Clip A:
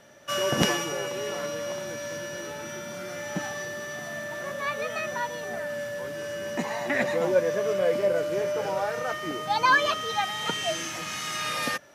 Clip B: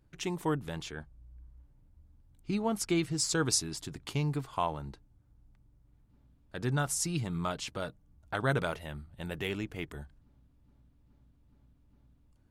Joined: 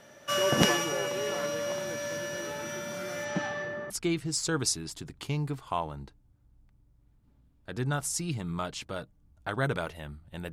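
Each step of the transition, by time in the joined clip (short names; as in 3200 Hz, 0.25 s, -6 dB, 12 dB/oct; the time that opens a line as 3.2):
clip A
3.24–3.9 LPF 7300 Hz -> 1200 Hz
3.9 switch to clip B from 2.76 s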